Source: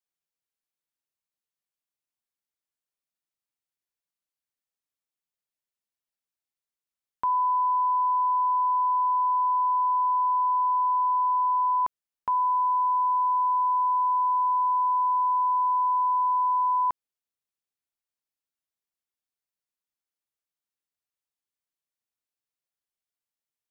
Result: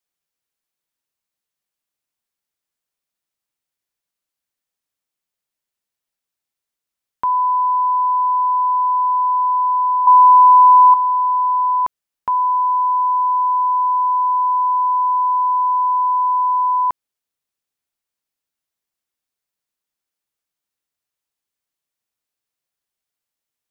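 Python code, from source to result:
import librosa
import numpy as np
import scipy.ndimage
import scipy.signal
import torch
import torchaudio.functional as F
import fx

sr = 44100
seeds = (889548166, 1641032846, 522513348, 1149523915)

y = fx.peak_eq(x, sr, hz=860.0, db=12.5, octaves=0.69, at=(10.07, 10.94))
y = F.gain(torch.from_numpy(y), 7.0).numpy()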